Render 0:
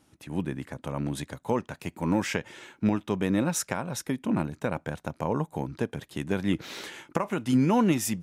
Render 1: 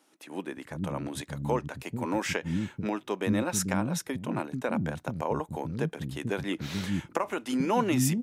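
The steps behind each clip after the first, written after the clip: bands offset in time highs, lows 440 ms, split 260 Hz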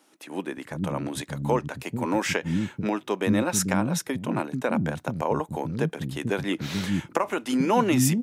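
high-pass 88 Hz; trim +4.5 dB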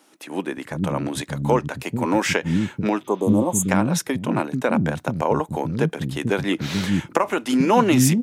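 spectral replace 3.07–3.66 s, 1.2–6.2 kHz before; loudspeaker Doppler distortion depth 0.12 ms; trim +5 dB

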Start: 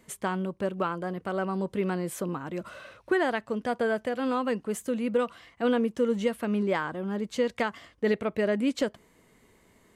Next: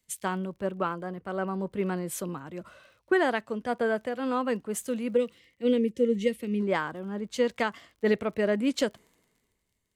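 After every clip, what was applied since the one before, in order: time-frequency box 5.16–6.60 s, 540–1800 Hz -18 dB; crackle 38 per s -44 dBFS; three bands expanded up and down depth 70%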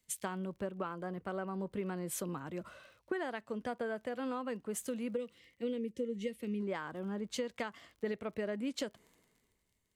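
compression 6:1, threshold -33 dBFS, peak gain reduction 13.5 dB; trim -1.5 dB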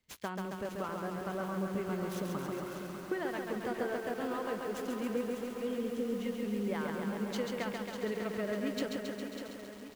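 median filter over 5 samples; on a send: feedback delay 597 ms, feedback 56%, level -9 dB; on the sum: bit-crushed delay 136 ms, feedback 80%, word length 9-bit, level -3.5 dB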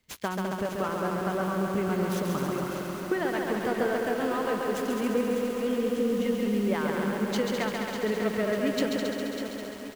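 delay 207 ms -6.5 dB; trim +7.5 dB

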